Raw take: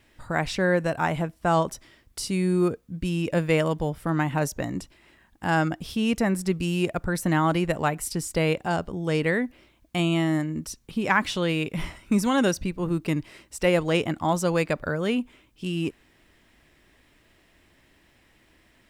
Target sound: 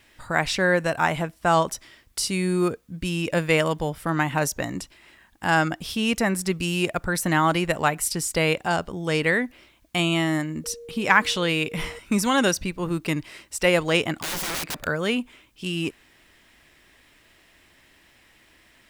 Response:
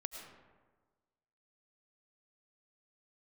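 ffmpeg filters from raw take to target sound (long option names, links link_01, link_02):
-filter_complex "[0:a]tiltshelf=frequency=750:gain=-4,asettb=1/sr,asplit=3[link_01][link_02][link_03];[link_01]atrim=end=10.644[link_04];[link_02]atrim=start=10.64:end=11.99,asetpts=PTS-STARTPTS,afade=type=in:duration=0.004:curve=qsin,afade=type=out:start_time=1.346:duration=0.004:curve=qsin,aeval=exprs='val(0)+0.00891*sin(2*PI*470*n/s)':channel_layout=same[link_05];[link_03]atrim=start=11.986[link_06];[link_04][link_05]acrossfade=duration=0.004:curve1=hsin:curve2=qsin[link_07];[link_07][link_06]acrossfade=duration=0.004:curve1=qsin:curve2=hsin,asettb=1/sr,asplit=3[link_08][link_09][link_10];[link_08]atrim=end=14.174[link_11];[link_09]atrim=start=14.17:end=14.87,asetpts=PTS-STARTPTS,afade=type=in:duration=0.004:curve=qsin,afade=type=out:start_time=0.696:duration=0.004:curve=qsin,aeval=exprs='(mod(21.1*val(0)+1,2)-1)/21.1':channel_layout=same[link_12];[link_10]atrim=start=14.866[link_13];[link_11][link_12]acrossfade=duration=0.004:curve1=hsin:curve2=qsin[link_14];[link_14][link_13]acrossfade=duration=0.004:curve1=qsin:curve2=hsin,volume=2.5dB"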